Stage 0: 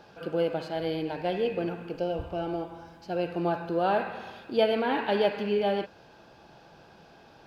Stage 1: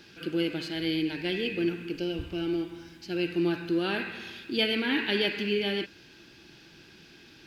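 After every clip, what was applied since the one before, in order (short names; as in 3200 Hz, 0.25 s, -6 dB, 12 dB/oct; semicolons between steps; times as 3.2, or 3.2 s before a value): EQ curve 200 Hz 0 dB, 340 Hz +6 dB, 510 Hz -11 dB, 720 Hz -15 dB, 1200 Hz -6 dB, 2000 Hz +8 dB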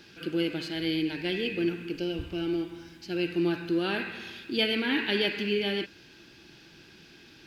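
nothing audible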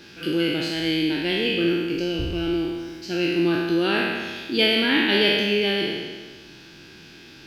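spectral trails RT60 1.49 s; gain +4.5 dB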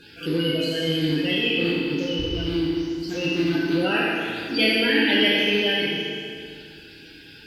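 bin magnitudes rounded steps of 30 dB; FDN reverb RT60 2.3 s, low-frequency decay 1×, high-frequency decay 0.9×, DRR 1 dB; gain -2 dB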